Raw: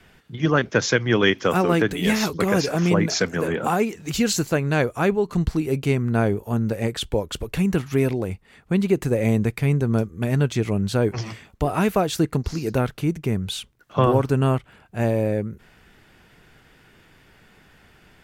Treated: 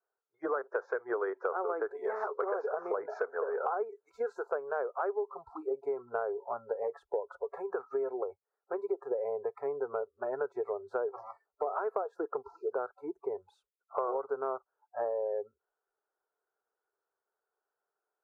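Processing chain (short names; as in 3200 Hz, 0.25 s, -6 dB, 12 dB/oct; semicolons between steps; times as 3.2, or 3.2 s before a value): spectral noise reduction 29 dB; elliptic band-pass 410–1400 Hz, stop band 40 dB; compressor 6:1, threshold -30 dBFS, peak gain reduction 13 dB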